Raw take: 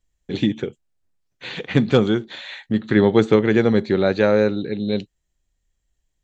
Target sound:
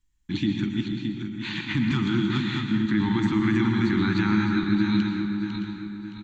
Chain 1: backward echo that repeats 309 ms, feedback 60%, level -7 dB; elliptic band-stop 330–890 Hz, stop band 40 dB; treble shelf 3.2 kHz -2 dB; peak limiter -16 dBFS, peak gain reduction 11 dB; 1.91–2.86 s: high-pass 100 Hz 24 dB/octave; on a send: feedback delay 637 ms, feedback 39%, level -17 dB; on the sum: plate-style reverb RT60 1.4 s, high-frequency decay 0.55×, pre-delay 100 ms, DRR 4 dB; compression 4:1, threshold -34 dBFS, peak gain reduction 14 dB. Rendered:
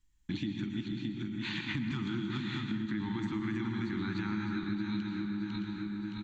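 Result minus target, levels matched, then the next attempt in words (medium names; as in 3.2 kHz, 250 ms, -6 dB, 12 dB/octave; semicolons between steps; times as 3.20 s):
compression: peak gain reduction +14 dB
backward echo that repeats 309 ms, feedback 60%, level -7 dB; elliptic band-stop 330–890 Hz, stop band 40 dB; treble shelf 3.2 kHz -2 dB; peak limiter -16 dBFS, peak gain reduction 11 dB; 1.91–2.86 s: high-pass 100 Hz 24 dB/octave; on a send: feedback delay 637 ms, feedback 39%, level -17 dB; on the sum: plate-style reverb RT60 1.4 s, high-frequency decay 0.55×, pre-delay 100 ms, DRR 4 dB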